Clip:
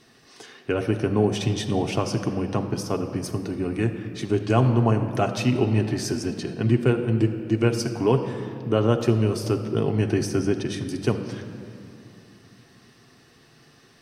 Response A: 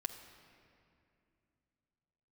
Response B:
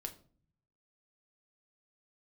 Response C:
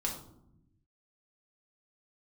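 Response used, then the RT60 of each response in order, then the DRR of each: A; 2.6, 0.45, 0.80 s; 3.0, 4.0, -2.0 dB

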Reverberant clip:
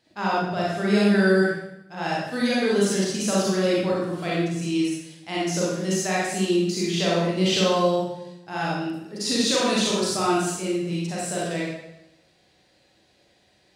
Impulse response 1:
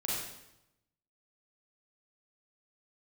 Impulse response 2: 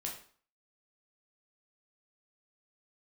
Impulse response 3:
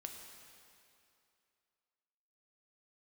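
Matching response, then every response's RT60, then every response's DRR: 1; 0.85, 0.45, 2.6 s; -6.5, -1.5, 2.5 dB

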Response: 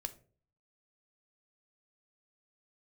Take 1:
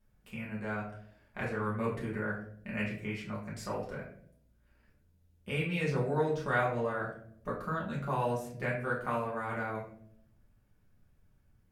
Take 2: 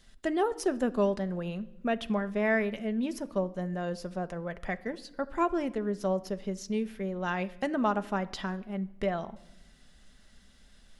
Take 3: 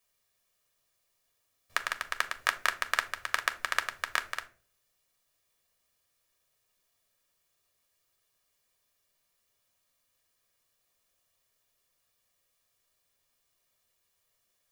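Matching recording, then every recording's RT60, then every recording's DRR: 3; 0.65, 1.0, 0.45 s; -6.0, 10.0, 8.0 dB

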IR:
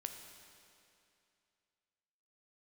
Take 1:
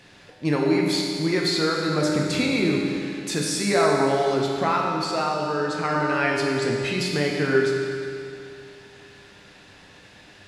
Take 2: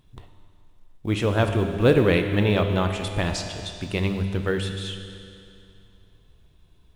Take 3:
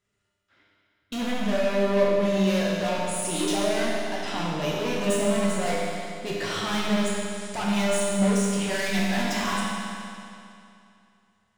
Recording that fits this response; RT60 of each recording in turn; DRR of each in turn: 2; 2.6, 2.6, 2.6 s; -1.5, 4.5, -6.0 dB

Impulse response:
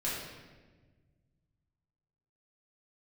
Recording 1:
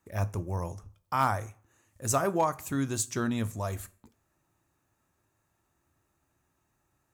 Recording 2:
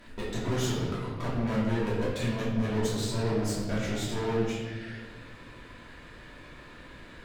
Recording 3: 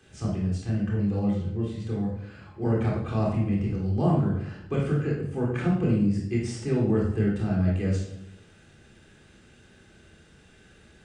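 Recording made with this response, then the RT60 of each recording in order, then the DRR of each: 2; 0.45, 1.4, 0.80 s; 11.0, -9.0, -3.0 dB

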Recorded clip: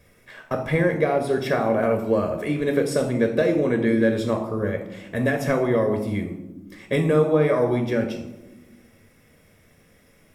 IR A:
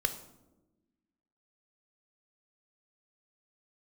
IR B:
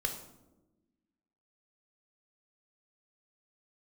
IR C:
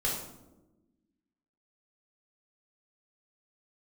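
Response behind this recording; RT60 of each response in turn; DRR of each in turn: B; 1.1, 1.1, 1.1 s; 8.5, 4.0, -4.0 dB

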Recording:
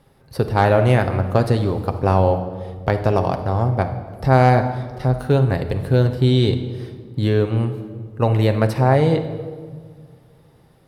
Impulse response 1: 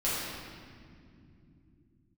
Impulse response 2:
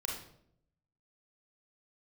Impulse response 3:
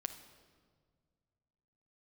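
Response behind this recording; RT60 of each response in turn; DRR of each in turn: 3; not exponential, 0.70 s, 1.8 s; -10.0, -2.0, 6.5 dB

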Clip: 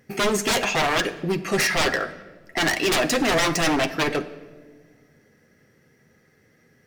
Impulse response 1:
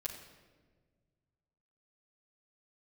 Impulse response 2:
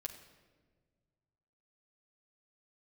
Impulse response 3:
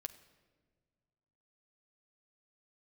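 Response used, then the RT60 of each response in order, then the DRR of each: 3; 1.5 s, 1.5 s, not exponential; -7.0, 0.0, 7.0 dB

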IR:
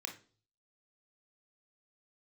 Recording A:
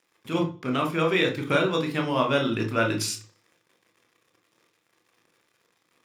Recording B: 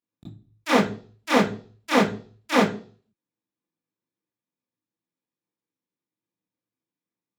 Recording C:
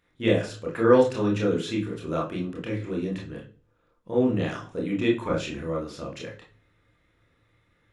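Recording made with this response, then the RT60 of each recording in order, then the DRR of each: A; 0.40, 0.40, 0.40 s; 3.0, -10.5, -2.0 dB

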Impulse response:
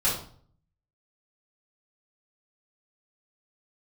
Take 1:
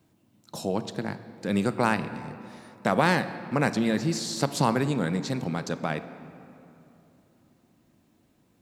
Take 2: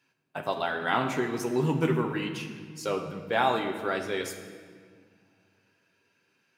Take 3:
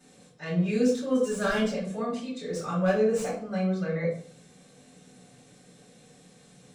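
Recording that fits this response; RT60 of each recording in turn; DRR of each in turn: 3; 3.0, 1.8, 0.50 s; 11.0, 2.5, -9.0 dB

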